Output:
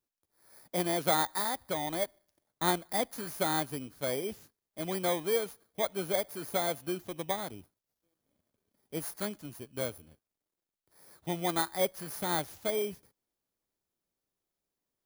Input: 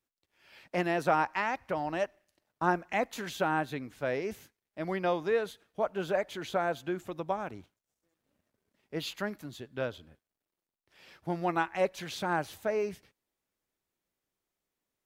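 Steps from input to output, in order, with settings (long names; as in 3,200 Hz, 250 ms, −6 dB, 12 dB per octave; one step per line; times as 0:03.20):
samples in bit-reversed order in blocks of 16 samples
level −1 dB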